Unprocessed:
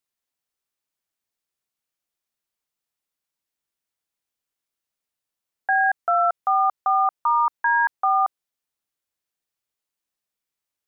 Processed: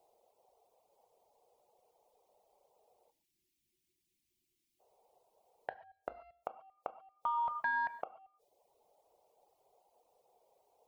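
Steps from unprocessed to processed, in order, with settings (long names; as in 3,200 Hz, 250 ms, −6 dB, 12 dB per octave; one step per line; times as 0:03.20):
flat-topped bell 1,200 Hz −15.5 dB 1.3 octaves
soft clipping −24.5 dBFS, distortion −17 dB
low-shelf EQ 460 Hz +7 dB
noise in a band 410–880 Hz −75 dBFS
gate with flip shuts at −26 dBFS, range −30 dB
time-frequency box erased 0:03.10–0:04.80, 380–1,600 Hz
reverb whose tail is shaped and stops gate 160 ms flat, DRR 6.5 dB
reverb reduction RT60 0.67 s
downward compressor, threshold −34 dBFS, peak gain reduction 4.5 dB
level +3.5 dB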